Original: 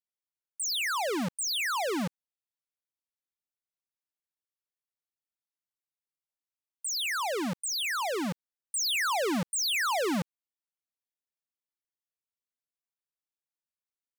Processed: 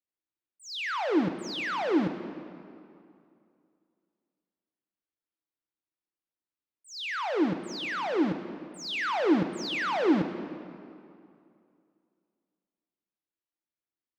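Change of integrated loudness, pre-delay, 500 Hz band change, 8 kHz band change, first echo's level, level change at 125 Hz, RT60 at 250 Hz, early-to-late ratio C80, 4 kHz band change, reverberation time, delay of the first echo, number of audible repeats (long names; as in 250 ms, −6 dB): 0.0 dB, 10 ms, +3.5 dB, −16.5 dB, no echo audible, +1.5 dB, 2.5 s, 10.0 dB, −5.5 dB, 2.5 s, no echo audible, no echo audible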